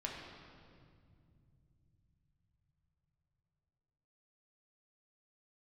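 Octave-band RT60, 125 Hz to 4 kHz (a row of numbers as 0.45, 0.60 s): 6.3, 4.7, 2.7, 2.0, 1.8, 1.6 s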